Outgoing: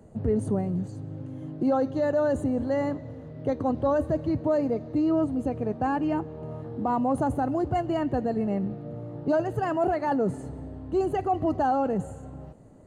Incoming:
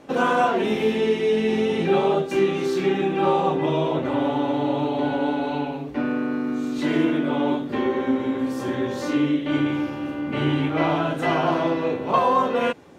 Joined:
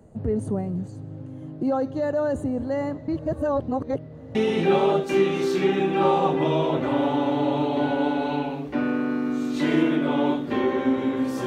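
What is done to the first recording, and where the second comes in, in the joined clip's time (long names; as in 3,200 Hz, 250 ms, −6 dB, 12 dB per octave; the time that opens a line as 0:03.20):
outgoing
0:03.08–0:04.35: reverse
0:04.35: continue with incoming from 0:01.57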